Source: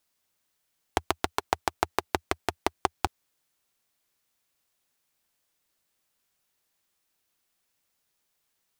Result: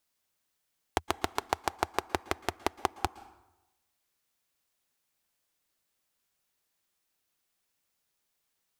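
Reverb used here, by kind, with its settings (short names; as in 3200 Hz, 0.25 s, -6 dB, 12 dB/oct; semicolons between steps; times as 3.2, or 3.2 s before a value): plate-style reverb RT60 0.96 s, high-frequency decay 0.6×, pre-delay 0.105 s, DRR 18 dB; gain -3 dB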